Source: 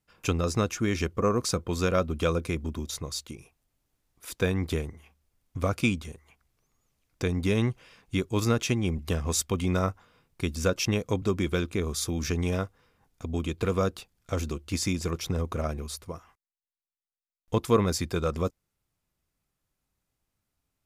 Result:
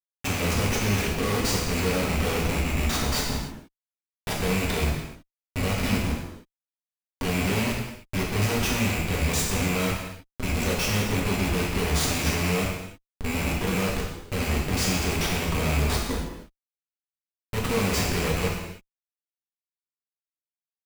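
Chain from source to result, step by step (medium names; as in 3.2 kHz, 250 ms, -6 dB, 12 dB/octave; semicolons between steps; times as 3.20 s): rattle on loud lows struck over -31 dBFS, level -18 dBFS; Schmitt trigger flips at -34.5 dBFS; gated-style reverb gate 340 ms falling, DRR -4 dB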